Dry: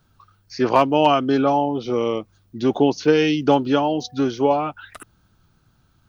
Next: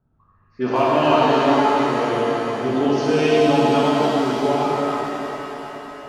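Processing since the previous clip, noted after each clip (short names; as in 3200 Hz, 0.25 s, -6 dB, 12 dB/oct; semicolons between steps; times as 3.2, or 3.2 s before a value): low-pass opened by the level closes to 840 Hz, open at -14 dBFS; shimmer reverb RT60 3.7 s, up +7 st, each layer -8 dB, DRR -7.5 dB; gain -7 dB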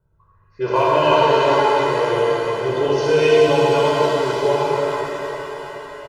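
comb 2 ms, depth 94%; gain -1 dB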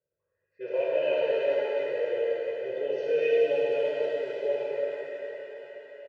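vowel filter e; gain -2.5 dB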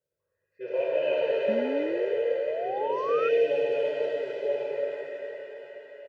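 painted sound rise, 1.48–3.29, 210–1400 Hz -33 dBFS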